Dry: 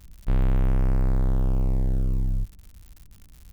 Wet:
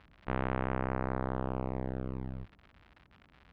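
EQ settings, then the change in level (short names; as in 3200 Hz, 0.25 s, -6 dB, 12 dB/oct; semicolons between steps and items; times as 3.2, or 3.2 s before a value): band-pass 1600 Hz, Q 0.55; air absorption 390 m; +7.5 dB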